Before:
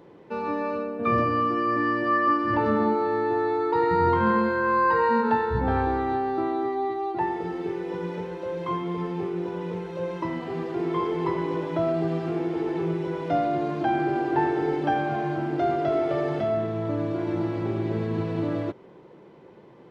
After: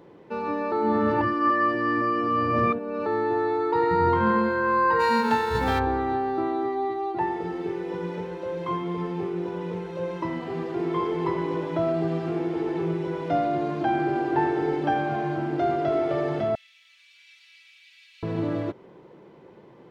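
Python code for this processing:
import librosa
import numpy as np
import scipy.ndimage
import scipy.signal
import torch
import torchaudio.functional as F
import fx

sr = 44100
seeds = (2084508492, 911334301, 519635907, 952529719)

y = fx.envelope_flatten(x, sr, power=0.6, at=(4.99, 5.78), fade=0.02)
y = fx.cheby1_highpass(y, sr, hz=2400.0, order=4, at=(16.55, 18.23))
y = fx.edit(y, sr, fx.reverse_span(start_s=0.72, length_s=2.34), tone=tone)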